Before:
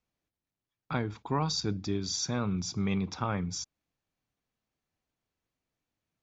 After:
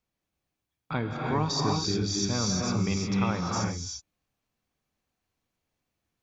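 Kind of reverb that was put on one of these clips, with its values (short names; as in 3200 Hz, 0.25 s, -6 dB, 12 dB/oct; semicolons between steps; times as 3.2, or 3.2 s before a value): non-linear reverb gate 0.38 s rising, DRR -1 dB; gain +1 dB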